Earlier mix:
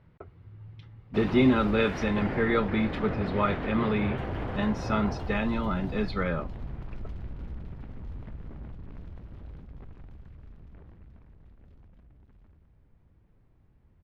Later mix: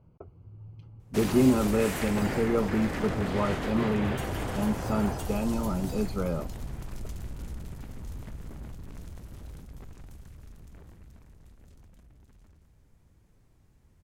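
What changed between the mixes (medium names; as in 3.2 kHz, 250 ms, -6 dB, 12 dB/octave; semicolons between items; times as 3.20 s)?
speech: add boxcar filter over 24 samples; master: remove distance through air 350 m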